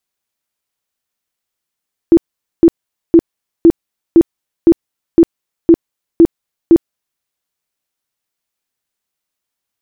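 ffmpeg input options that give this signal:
-f lavfi -i "aevalsrc='0.841*sin(2*PI*334*mod(t,0.51))*lt(mod(t,0.51),17/334)':d=5.1:s=44100"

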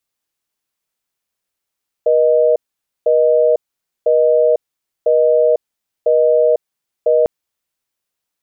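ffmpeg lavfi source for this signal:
-f lavfi -i "aevalsrc='0.251*(sin(2*PI*480*t)+sin(2*PI*620*t))*clip(min(mod(t,1),0.5-mod(t,1))/0.005,0,1)':d=5.2:s=44100"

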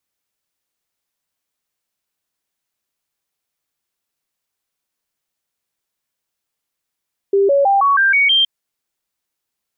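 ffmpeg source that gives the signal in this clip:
-f lavfi -i "aevalsrc='0.316*clip(min(mod(t,0.16),0.16-mod(t,0.16))/0.005,0,1)*sin(2*PI*396*pow(2,floor(t/0.16)/2)*mod(t,0.16))':d=1.12:s=44100"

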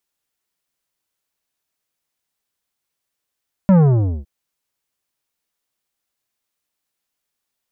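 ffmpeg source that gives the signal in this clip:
-f lavfi -i "aevalsrc='0.355*clip((0.56-t)/0.5,0,1)*tanh(3.76*sin(2*PI*200*0.56/log(65/200)*(exp(log(65/200)*t/0.56)-1)))/tanh(3.76)':d=0.56:s=44100"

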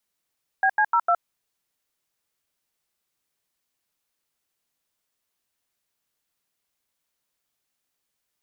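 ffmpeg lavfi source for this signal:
-f lavfi -i "aevalsrc='0.112*clip(min(mod(t,0.151),0.066-mod(t,0.151))/0.002,0,1)*(eq(floor(t/0.151),0)*(sin(2*PI*770*mod(t,0.151))+sin(2*PI*1633*mod(t,0.151)))+eq(floor(t/0.151),1)*(sin(2*PI*852*mod(t,0.151))+sin(2*PI*1633*mod(t,0.151)))+eq(floor(t/0.151),2)*(sin(2*PI*941*mod(t,0.151))+sin(2*PI*1336*mod(t,0.151)))+eq(floor(t/0.151),3)*(sin(2*PI*697*mod(t,0.151))+sin(2*PI*1336*mod(t,0.151))))':d=0.604:s=44100"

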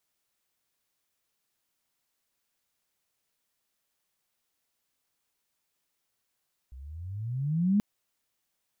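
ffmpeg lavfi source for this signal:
-f lavfi -i "aevalsrc='pow(10,(-19.5+23*(t/1.08-1))/20)*sin(2*PI*61.5*1.08/(21.5*log(2)/12)*(exp(21.5*log(2)/12*t/1.08)-1))':d=1.08:s=44100"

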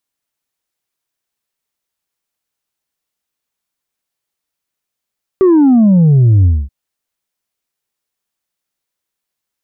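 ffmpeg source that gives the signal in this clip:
-f lavfi -i "aevalsrc='0.531*clip((1.28-t)/0.24,0,1)*tanh(1.33*sin(2*PI*390*1.28/log(65/390)*(exp(log(65/390)*t/1.28)-1)))/tanh(1.33)':d=1.28:s=44100"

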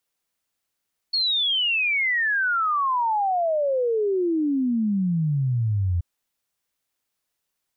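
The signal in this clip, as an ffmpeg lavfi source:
-f lavfi -i "aevalsrc='0.106*clip(min(t,4.88-t)/0.01,0,1)*sin(2*PI*4400*4.88/log(84/4400)*(exp(log(84/4400)*t/4.88)-1))':d=4.88:s=44100"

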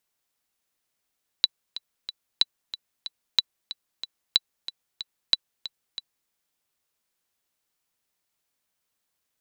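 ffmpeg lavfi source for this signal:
-f lavfi -i "aevalsrc='pow(10,(-4.5-15*gte(mod(t,3*60/185),60/185))/20)*sin(2*PI*3960*mod(t,60/185))*exp(-6.91*mod(t,60/185)/0.03)':d=4.86:s=44100"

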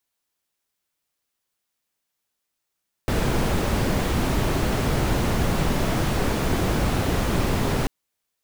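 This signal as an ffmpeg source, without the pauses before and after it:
-f lavfi -i "anoisesrc=c=brown:a=0.394:d=4.79:r=44100:seed=1"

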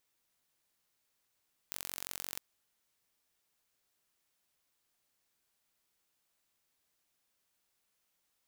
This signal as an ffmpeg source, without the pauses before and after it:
-f lavfi -i "aevalsrc='0.282*eq(mod(n,963),0)*(0.5+0.5*eq(mod(n,1926),0))':d=0.67:s=44100"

